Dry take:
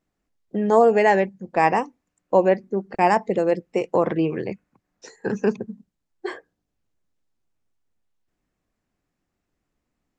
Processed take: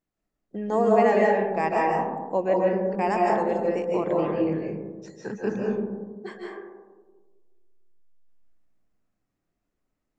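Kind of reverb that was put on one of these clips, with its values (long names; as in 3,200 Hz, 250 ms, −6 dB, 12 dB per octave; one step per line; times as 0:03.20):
comb and all-pass reverb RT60 1.4 s, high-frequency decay 0.25×, pre-delay 115 ms, DRR −3 dB
level −8.5 dB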